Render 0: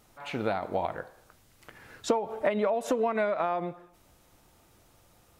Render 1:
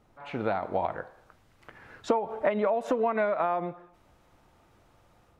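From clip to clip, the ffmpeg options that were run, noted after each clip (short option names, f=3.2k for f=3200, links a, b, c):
-filter_complex "[0:a]lowpass=f=1.2k:p=1,acrossover=split=760[a][b];[b]dynaudnorm=f=220:g=3:m=5.5dB[c];[a][c]amix=inputs=2:normalize=0"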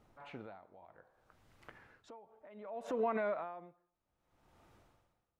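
-af "alimiter=limit=-21.5dB:level=0:latency=1:release=31,aeval=exprs='val(0)*pow(10,-24*(0.5-0.5*cos(2*PI*0.64*n/s))/20)':c=same,volume=-3.5dB"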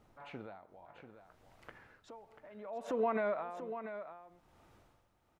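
-af "aecho=1:1:689:0.316,volume=1.5dB"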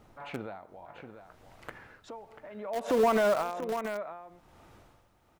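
-filter_complex "[0:a]asplit=2[a][b];[b]acrusher=bits=5:mix=0:aa=0.000001,volume=-9.5dB[c];[a][c]amix=inputs=2:normalize=0,asoftclip=type=tanh:threshold=-25dB,volume=8dB"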